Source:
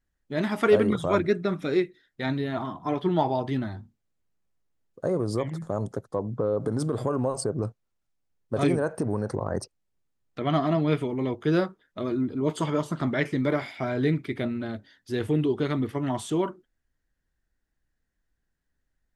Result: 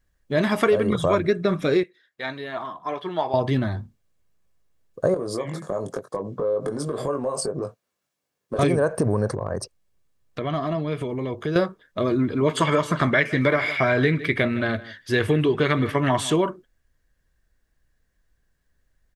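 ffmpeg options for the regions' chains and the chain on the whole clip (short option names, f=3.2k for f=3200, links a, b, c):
-filter_complex "[0:a]asettb=1/sr,asplit=3[a][b][c];[a]atrim=end=1.834[d];[b]atrim=start=1.83:end=3.34,asetpts=PTS-STARTPTS,afade=t=in:d=0.004:c=qsin,afade=t=out:st=1.506:d=0.004:c=qsin,highpass=f=1.4k:p=1,highshelf=f=2.6k:g=-9[e];[c]atrim=start=3.336[f];[d][e]acrossfade=d=0.004:c1=hsin:c2=qsin[g];[g][f]acrossfade=d=0.004:c1=qsin:c2=hsin,asettb=1/sr,asplit=3[h][i][j];[h]atrim=end=5.144[k];[i]atrim=start=5.14:end=8.59,asetpts=PTS-STARTPTS,afade=t=in:d=0.004:c=qsin,afade=t=out:st=3.446:d=0.004:c=qsin,highpass=210,acompressor=threshold=-33dB:ratio=4:attack=3.2:release=140:knee=1:detection=peak,asplit=2[l][m];[m]adelay=21,volume=-5.5dB[n];[l][n]amix=inputs=2:normalize=0,atrim=end_sample=152145[o];[j]atrim=start=8.586[p];[k][o]acrossfade=d=0.004:c1=hsin:c2=qsin[q];[q][p]acrossfade=d=0.004:c1=qsin:c2=hsin,asettb=1/sr,asplit=3[r][s][t];[r]atrim=end=9.324[u];[s]atrim=start=9.32:end=11.56,asetpts=PTS-STARTPTS,afade=t=in:d=0.004:c=qsin,afade=t=out:st=2.236:d=0.004:c=qsin,acompressor=threshold=-33dB:ratio=3:attack=3.2:release=140:knee=1:detection=peak,asoftclip=type=hard:threshold=-22dB[v];[t]atrim=start=11.556[w];[u][v]acrossfade=d=0.004:c1=hsin:c2=qsin[x];[x][w]acrossfade=d=0.004:c1=qsin:c2=hsin,asettb=1/sr,asplit=3[y][z][aa];[y]atrim=end=12.194[ab];[z]atrim=start=12.19:end=16.36,asetpts=PTS-STARTPTS,afade=t=in:d=0.004:c=qsin,afade=t=out:st=4.166:d=0.004:c=qsin,equalizer=f=1.9k:t=o:w=1.7:g=9,aecho=1:1:158:0.112,atrim=end_sample=183897[ac];[aa]atrim=start=16.356[ad];[ab][ac]acrossfade=d=0.004:c1=hsin:c2=qsin[ae];[ae][ad]acrossfade=d=0.004:c1=qsin:c2=hsin,aecho=1:1:1.8:0.31,acompressor=threshold=-24dB:ratio=6,volume=8dB"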